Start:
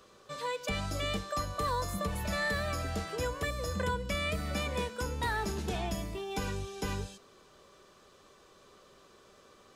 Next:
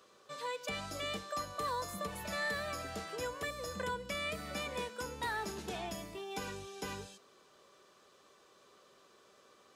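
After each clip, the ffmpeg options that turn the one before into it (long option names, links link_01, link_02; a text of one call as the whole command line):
ffmpeg -i in.wav -af "highpass=frequency=280:poles=1,volume=-3.5dB" out.wav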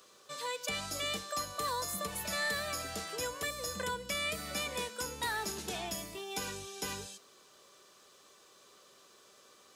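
ffmpeg -i in.wav -af "highshelf=frequency=3600:gain=11" out.wav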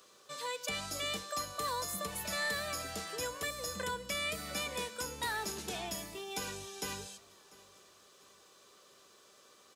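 ffmpeg -i in.wav -af "aecho=1:1:695|1390|2085:0.075|0.0322|0.0139,volume=-1dB" out.wav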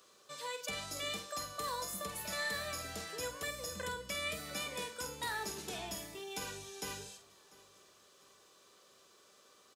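ffmpeg -i in.wav -filter_complex "[0:a]asplit=2[link_01][link_02];[link_02]adelay=48,volume=-8.5dB[link_03];[link_01][link_03]amix=inputs=2:normalize=0,volume=-3dB" out.wav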